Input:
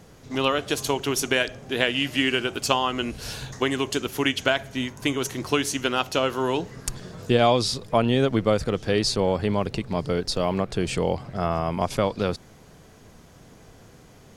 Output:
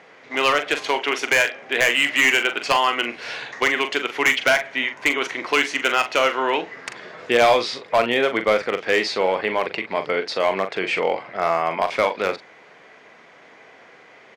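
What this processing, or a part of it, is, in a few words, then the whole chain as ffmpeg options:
megaphone: -filter_complex "[0:a]asettb=1/sr,asplit=3[link_01][link_02][link_03];[link_01]atrim=end=0.984[link_04];[link_02]atrim=start=0.98:end=1.62,asetpts=PTS-STARTPTS,afade=type=in:duration=0.004:curve=qsin,afade=type=out:start_time=0.636:duration=0.004:curve=qsin,highpass=180[link_05];[link_03]atrim=start=1.616[link_06];[link_04][link_05]acrossfade=duration=0.004:curve1=hsin:curve2=qsin[link_07];[link_07][link_06]acrossfade=duration=0.004:curve1=qsin:curve2=hsin,highpass=500,lowpass=3000,equalizer=frequency=2100:width_type=o:width=0.56:gain=10,asoftclip=type=hard:threshold=-16.5dB,asplit=2[link_08][link_09];[link_09]adelay=42,volume=-9dB[link_10];[link_08][link_10]amix=inputs=2:normalize=0,volume=6dB"

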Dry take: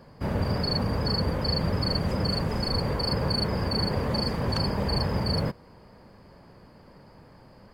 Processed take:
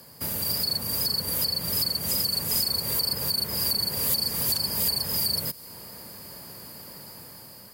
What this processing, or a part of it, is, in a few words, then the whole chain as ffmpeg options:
FM broadcast chain: -filter_complex "[0:a]highpass=77,dynaudnorm=framelen=480:gausssize=5:maxgain=7dB,acrossover=split=130|2900[link_01][link_02][link_03];[link_01]acompressor=threshold=-39dB:ratio=4[link_04];[link_02]acompressor=threshold=-35dB:ratio=4[link_05];[link_03]acompressor=threshold=-36dB:ratio=4[link_06];[link_04][link_05][link_06]amix=inputs=3:normalize=0,aemphasis=mode=production:type=75fm,alimiter=limit=-21dB:level=0:latency=1:release=116,asoftclip=type=hard:threshold=-24.5dB,lowpass=frequency=15000:width=0.5412,lowpass=frequency=15000:width=1.3066,aemphasis=mode=production:type=75fm,volume=-2dB"

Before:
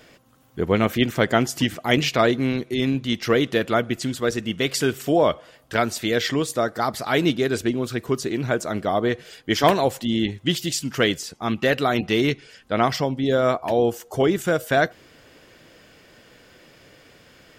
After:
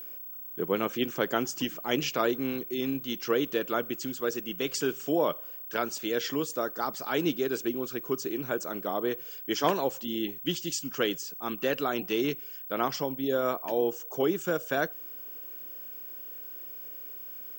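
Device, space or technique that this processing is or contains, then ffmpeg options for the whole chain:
old television with a line whistle: -af "highpass=frequency=170:width=0.5412,highpass=frequency=170:width=1.3066,equalizer=frequency=220:width_type=q:width=4:gain=-7,equalizer=frequency=680:width_type=q:width=4:gain=-6,equalizer=frequency=2000:width_type=q:width=4:gain=-9,equalizer=frequency=3900:width_type=q:width=4:gain=-7,equalizer=frequency=6400:width_type=q:width=4:gain=3,lowpass=frequency=7900:width=0.5412,lowpass=frequency=7900:width=1.3066,aeval=exprs='val(0)+0.0224*sin(2*PI*15734*n/s)':channel_layout=same,volume=-6dB"

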